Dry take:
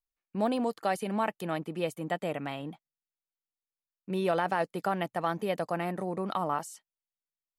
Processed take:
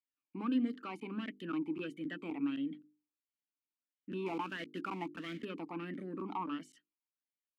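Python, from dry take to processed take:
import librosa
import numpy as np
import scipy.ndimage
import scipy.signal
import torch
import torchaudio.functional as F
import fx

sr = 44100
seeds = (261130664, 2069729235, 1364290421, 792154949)

y = 10.0 ** (-24.5 / 20.0) * np.tanh(x / 10.0 ** (-24.5 / 20.0))
y = fx.quant_companded(y, sr, bits=4, at=(4.26, 5.45))
y = fx.hum_notches(y, sr, base_hz=50, count=9)
y = fx.buffer_crackle(y, sr, first_s=0.74, period_s=0.26, block=512, kind='zero')
y = fx.vowel_sweep(y, sr, vowels='i-u', hz=1.5)
y = y * librosa.db_to_amplitude(8.5)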